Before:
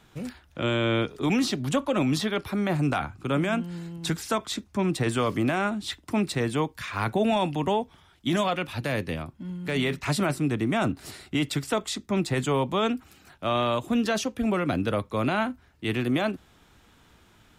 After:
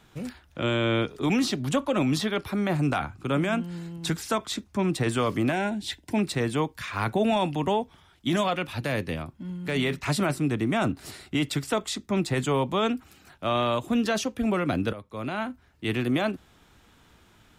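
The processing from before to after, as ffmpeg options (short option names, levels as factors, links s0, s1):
-filter_complex "[0:a]asettb=1/sr,asplit=3[s0][s1][s2];[s0]atrim=end=5.524[s3];[s1]atrim=start=5.52:end=6.19,asetpts=PTS-STARTPTS,afade=t=in:d=0.004:c=qsin,afade=t=out:st=0.666:d=0.004:c=qsin,asuperstop=centerf=1200:order=4:qfactor=2.6[s4];[s2]atrim=start=6.186[s5];[s3][s4]acrossfade=d=0.004:c1=hsin:c2=qsin[s6];[s6][s5]acrossfade=d=0.004:c1=qsin:c2=hsin,asplit=2[s7][s8];[s7]atrim=end=14.93,asetpts=PTS-STARTPTS,afade=t=out:st=14.926:d=0.004:c=hsin:silence=0.16788[s9];[s8]atrim=start=14.93,asetpts=PTS-STARTPTS,afade=t=in:d=0.92:silence=0.16788[s10];[s9][s10]concat=n=2:v=0:a=1"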